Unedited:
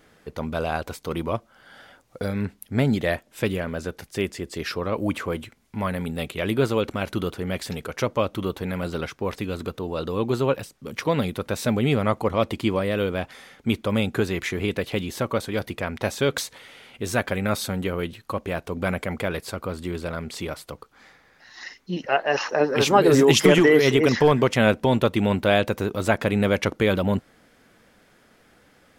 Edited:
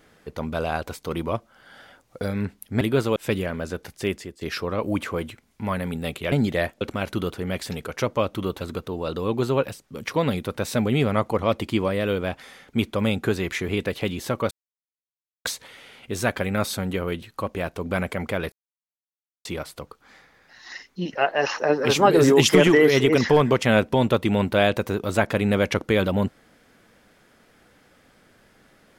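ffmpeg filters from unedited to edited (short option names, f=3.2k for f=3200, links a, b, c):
-filter_complex "[0:a]asplit=11[a][b][c][d][e][f][g][h][i][j][k];[a]atrim=end=2.812[l];[b]atrim=start=6.458:end=6.812[m];[c]atrim=start=3.298:end=4.55,asetpts=PTS-STARTPTS,afade=t=out:st=0.972:d=0.28:silence=0.141254[n];[d]atrim=start=4.55:end=6.462,asetpts=PTS-STARTPTS,afade=t=in:d=0.004:c=hsin:silence=0.141254[o];[e]atrim=start=2.808:end=3.302[p];[f]atrim=start=6.808:end=8.612[q];[g]atrim=start=9.518:end=15.42,asetpts=PTS-STARTPTS,afade=t=out:st=5.898:d=0.004:c=hsin[r];[h]atrim=start=15.42:end=16.36,asetpts=PTS-STARTPTS,volume=0[s];[i]atrim=start=16.36:end=19.43,asetpts=PTS-STARTPTS,afade=t=in:d=0.004:c=hsin,afade=t=out:st=3.066:d=0.004:c=hsin[t];[j]atrim=start=19.43:end=20.36,asetpts=PTS-STARTPTS,volume=0[u];[k]atrim=start=20.36,asetpts=PTS-STARTPTS,afade=t=in:d=0.004:c=hsin[v];[l][m]acrossfade=d=0.004:c1=hsin:c2=hsin[w];[n][o]concat=n=2:v=0:a=1[x];[w][x]acrossfade=d=0.004:c1=hsin:c2=hsin[y];[y][p]acrossfade=d=0.004:c1=hsin:c2=hsin[z];[z][q]acrossfade=d=0.004:c1=hsin:c2=hsin[aa];[r][s][t][u][v]concat=n=5:v=0:a=1[ab];[aa][ab]acrossfade=d=0.004:c1=hsin:c2=hsin"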